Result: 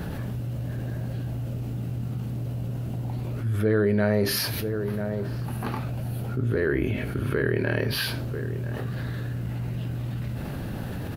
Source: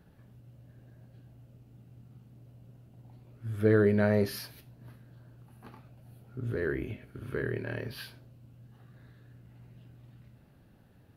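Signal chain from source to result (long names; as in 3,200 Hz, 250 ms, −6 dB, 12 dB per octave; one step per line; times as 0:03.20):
slap from a distant wall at 170 metres, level −22 dB
envelope flattener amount 70%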